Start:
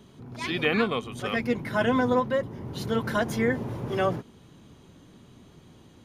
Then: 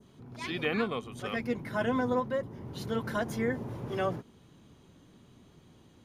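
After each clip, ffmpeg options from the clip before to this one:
ffmpeg -i in.wav -af "adynamicequalizer=threshold=0.00708:dfrequency=3000:dqfactor=0.9:tfrequency=3000:tqfactor=0.9:attack=5:release=100:ratio=0.375:range=2:mode=cutabove:tftype=bell,volume=-5.5dB" out.wav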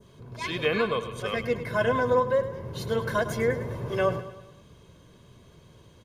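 ffmpeg -i in.wav -filter_complex "[0:a]aecho=1:1:1.9:0.56,asplit=2[link_01][link_02];[link_02]aecho=0:1:104|208|312|416|520:0.237|0.119|0.0593|0.0296|0.0148[link_03];[link_01][link_03]amix=inputs=2:normalize=0,volume=4dB" out.wav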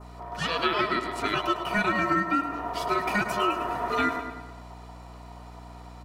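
ffmpeg -i in.wav -filter_complex "[0:a]aeval=exprs='val(0)*sin(2*PI*830*n/s)':channel_layout=same,aeval=exprs='val(0)+0.00282*(sin(2*PI*60*n/s)+sin(2*PI*2*60*n/s)/2+sin(2*PI*3*60*n/s)/3+sin(2*PI*4*60*n/s)/4+sin(2*PI*5*60*n/s)/5)':channel_layout=same,acrossover=split=1100|4100[link_01][link_02][link_03];[link_01]acompressor=threshold=-34dB:ratio=4[link_04];[link_02]acompressor=threshold=-33dB:ratio=4[link_05];[link_03]acompressor=threshold=-49dB:ratio=4[link_06];[link_04][link_05][link_06]amix=inputs=3:normalize=0,volume=7dB" out.wav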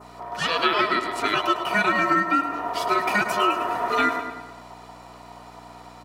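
ffmpeg -i in.wav -af "highpass=frequency=310:poles=1,volume=5dB" out.wav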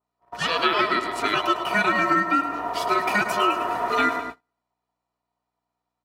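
ffmpeg -i in.wav -af "agate=range=-39dB:threshold=-31dB:ratio=16:detection=peak" out.wav

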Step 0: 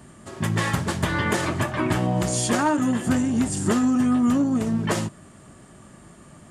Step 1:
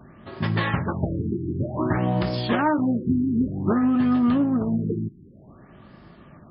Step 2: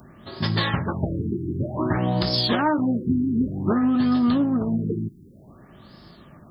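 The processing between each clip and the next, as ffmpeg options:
ffmpeg -i in.wav -af "afftfilt=real='re*lt(b*sr/1024,390*pow(5400/390,0.5+0.5*sin(2*PI*0.54*pts/sr)))':imag='im*lt(b*sr/1024,390*pow(5400/390,0.5+0.5*sin(2*PI*0.54*pts/sr)))':win_size=1024:overlap=0.75" out.wav
ffmpeg -i in.wav -af "aexciter=amount=4.5:drive=7.8:freq=3700" out.wav

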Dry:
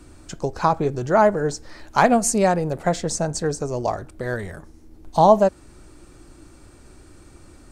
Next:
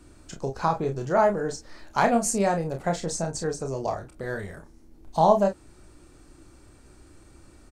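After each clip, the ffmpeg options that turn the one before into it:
ffmpeg -i in.wav -af "aecho=1:1:30|45:0.501|0.224,volume=-6dB" out.wav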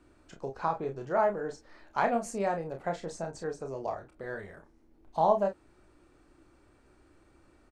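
ffmpeg -i in.wav -af "bass=frequency=250:gain=-7,treble=frequency=4000:gain=-12,volume=-5.5dB" out.wav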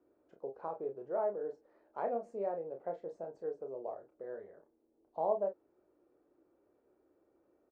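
ffmpeg -i in.wav -af "bandpass=frequency=480:width_type=q:width=2.2:csg=0,volume=-2.5dB" out.wav

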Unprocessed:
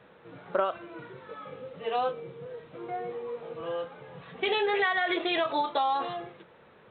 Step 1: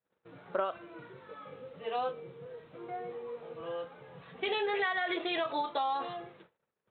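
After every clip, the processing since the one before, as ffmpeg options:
ffmpeg -i in.wav -af "agate=range=-31dB:threshold=-52dB:ratio=16:detection=peak,volume=-5dB" out.wav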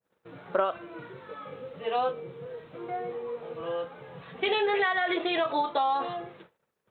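ffmpeg -i in.wav -af "adynamicequalizer=threshold=0.00398:dfrequency=1600:dqfactor=0.7:tfrequency=1600:tqfactor=0.7:attack=5:release=100:ratio=0.375:range=1.5:mode=cutabove:tftype=highshelf,volume=6dB" out.wav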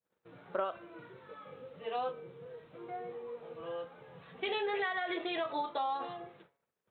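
ffmpeg -i in.wav -af "bandreject=frequency=139.5:width_type=h:width=4,bandreject=frequency=279:width_type=h:width=4,bandreject=frequency=418.5:width_type=h:width=4,bandreject=frequency=558:width_type=h:width=4,bandreject=frequency=697.5:width_type=h:width=4,bandreject=frequency=837:width_type=h:width=4,bandreject=frequency=976.5:width_type=h:width=4,bandreject=frequency=1116:width_type=h:width=4,bandreject=frequency=1255.5:width_type=h:width=4,bandreject=frequency=1395:width_type=h:width=4,bandreject=frequency=1534.5:width_type=h:width=4,bandreject=frequency=1674:width_type=h:width=4,bandreject=frequency=1813.5:width_type=h:width=4,bandreject=frequency=1953:width_type=h:width=4,bandreject=frequency=2092.5:width_type=h:width=4,bandreject=frequency=2232:width_type=h:width=4,volume=-8dB" out.wav

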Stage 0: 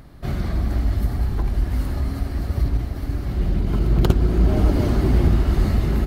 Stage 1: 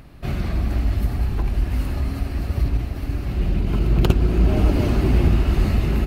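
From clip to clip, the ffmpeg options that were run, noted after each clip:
ffmpeg -i in.wav -af "equalizer=frequency=2600:width=4.6:gain=9.5" out.wav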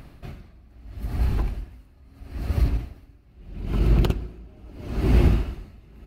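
ffmpeg -i in.wav -af "aeval=exprs='val(0)*pow(10,-30*(0.5-0.5*cos(2*PI*0.77*n/s))/20)':channel_layout=same" out.wav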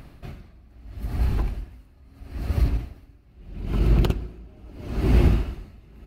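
ffmpeg -i in.wav -af anull out.wav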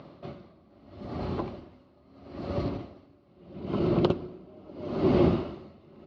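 ffmpeg -i in.wav -af "highpass=frequency=110:width=0.5412,highpass=frequency=110:width=1.3066,equalizer=frequency=120:width_type=q:width=4:gain=-8,equalizer=frequency=360:width_type=q:width=4:gain=5,equalizer=frequency=570:width_type=q:width=4:gain=9,equalizer=frequency=1100:width_type=q:width=4:gain=5,equalizer=frequency=1700:width_type=q:width=4:gain=-9,equalizer=frequency=2500:width_type=q:width=4:gain=-7,lowpass=frequency=4500:width=0.5412,lowpass=frequency=4500:width=1.3066" out.wav

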